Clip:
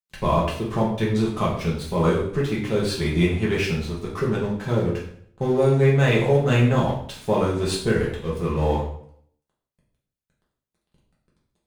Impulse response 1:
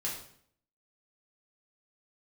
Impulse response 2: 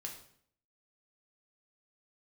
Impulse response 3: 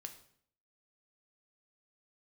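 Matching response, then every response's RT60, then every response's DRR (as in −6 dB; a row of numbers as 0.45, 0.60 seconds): 1; 0.60, 0.60, 0.60 seconds; −5.0, 0.5, 5.5 decibels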